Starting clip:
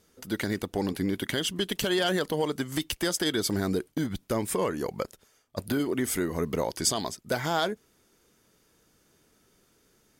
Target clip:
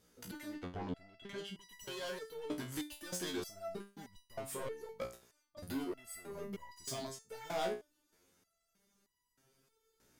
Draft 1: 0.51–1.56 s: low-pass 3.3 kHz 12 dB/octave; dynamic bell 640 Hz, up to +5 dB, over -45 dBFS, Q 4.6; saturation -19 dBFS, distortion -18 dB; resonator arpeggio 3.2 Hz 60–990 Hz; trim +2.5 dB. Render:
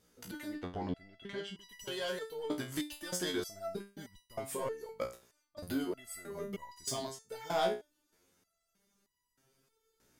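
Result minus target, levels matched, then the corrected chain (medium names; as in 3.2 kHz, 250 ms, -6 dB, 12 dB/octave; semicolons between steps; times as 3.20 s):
saturation: distortion -10 dB
0.51–1.56 s: low-pass 3.3 kHz 12 dB/octave; dynamic bell 640 Hz, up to +5 dB, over -45 dBFS, Q 4.6; saturation -29 dBFS, distortion -8 dB; resonator arpeggio 3.2 Hz 60–990 Hz; trim +2.5 dB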